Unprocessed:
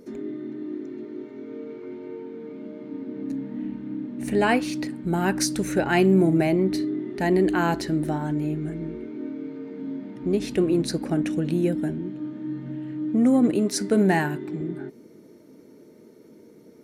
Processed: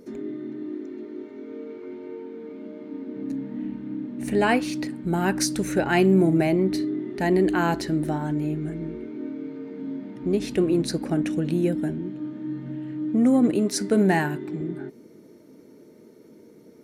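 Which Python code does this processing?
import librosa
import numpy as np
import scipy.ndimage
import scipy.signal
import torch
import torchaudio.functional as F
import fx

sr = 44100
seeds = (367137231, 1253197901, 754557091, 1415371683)

y = fx.peak_eq(x, sr, hz=140.0, db=-12.0, octaves=0.44, at=(0.69, 3.16))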